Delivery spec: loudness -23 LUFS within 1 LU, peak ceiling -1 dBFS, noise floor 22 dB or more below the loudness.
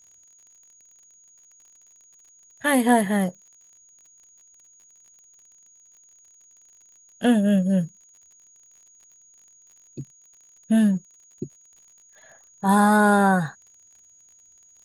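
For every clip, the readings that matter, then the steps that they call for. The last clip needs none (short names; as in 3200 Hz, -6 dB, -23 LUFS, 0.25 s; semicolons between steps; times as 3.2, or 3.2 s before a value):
ticks 36/s; steady tone 6700 Hz; tone level -52 dBFS; loudness -21.0 LUFS; peak -7.5 dBFS; loudness target -23.0 LUFS
-> de-click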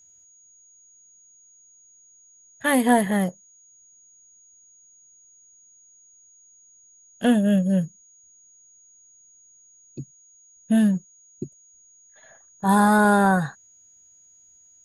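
ticks 0/s; steady tone 6700 Hz; tone level -52 dBFS
-> notch 6700 Hz, Q 30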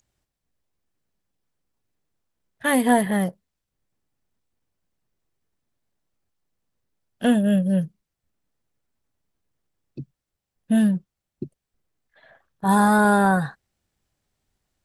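steady tone none; loudness -20.5 LUFS; peak -7.5 dBFS; loudness target -23.0 LUFS
-> gain -2.5 dB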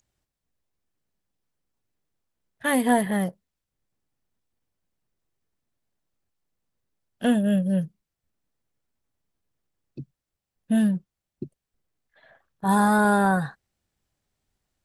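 loudness -23.0 LUFS; peak -10.0 dBFS; noise floor -86 dBFS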